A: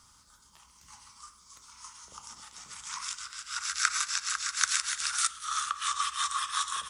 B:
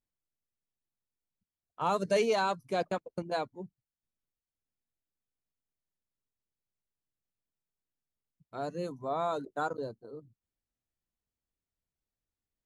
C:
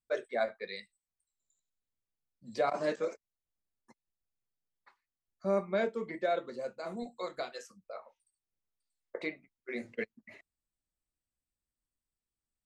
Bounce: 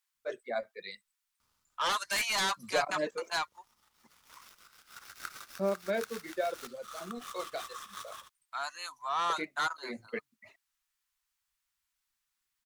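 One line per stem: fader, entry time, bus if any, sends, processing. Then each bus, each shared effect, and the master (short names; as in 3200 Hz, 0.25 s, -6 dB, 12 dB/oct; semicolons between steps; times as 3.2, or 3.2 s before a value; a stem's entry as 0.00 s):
-12.5 dB, 1.40 s, no send, switching dead time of 0.074 ms; auto duck -7 dB, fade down 0.25 s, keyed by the second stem
-3.5 dB, 0.00 s, no send, inverse Chebyshev high-pass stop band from 500 Hz, stop band 40 dB; sine folder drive 11 dB, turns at -22.5 dBFS
+1.0 dB, 0.15 s, no send, reverb removal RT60 1.5 s; noise-modulated level, depth 60%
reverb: off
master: dry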